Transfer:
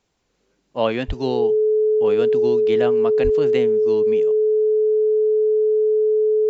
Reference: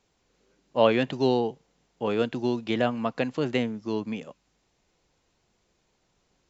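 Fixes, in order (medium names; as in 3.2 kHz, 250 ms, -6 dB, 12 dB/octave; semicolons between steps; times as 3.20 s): band-stop 430 Hz, Q 30; 1.07–1.19 s: high-pass 140 Hz 24 dB/octave; 3.23–3.35 s: high-pass 140 Hz 24 dB/octave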